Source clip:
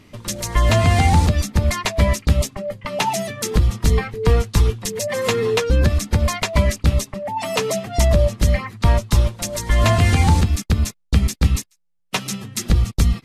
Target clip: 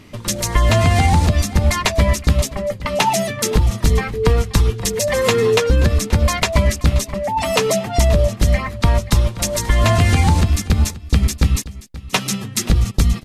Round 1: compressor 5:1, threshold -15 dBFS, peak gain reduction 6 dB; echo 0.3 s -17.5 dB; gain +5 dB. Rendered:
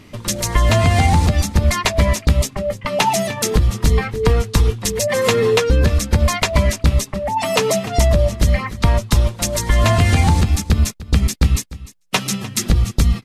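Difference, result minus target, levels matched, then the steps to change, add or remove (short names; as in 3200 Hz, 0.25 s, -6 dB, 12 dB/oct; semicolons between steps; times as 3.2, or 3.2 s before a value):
echo 0.23 s early
change: echo 0.53 s -17.5 dB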